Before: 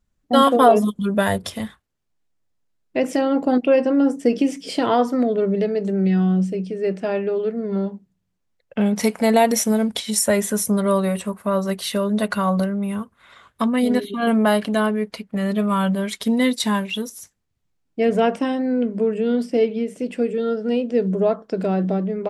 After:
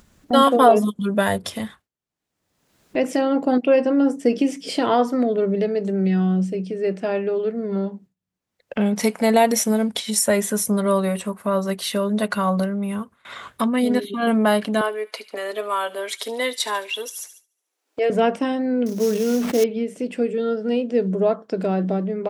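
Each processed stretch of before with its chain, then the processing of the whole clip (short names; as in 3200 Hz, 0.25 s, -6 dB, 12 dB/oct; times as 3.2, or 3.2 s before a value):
14.81–18.1 inverse Chebyshev high-pass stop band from 180 Hz + thin delay 72 ms, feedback 50%, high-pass 2400 Hz, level -15 dB
18.86–19.64 sample-rate reducer 6000 Hz, jitter 20% + sustainer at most 45 dB/s
whole clip: gate with hold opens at -41 dBFS; HPF 120 Hz 6 dB/oct; upward compressor, threshold -24 dBFS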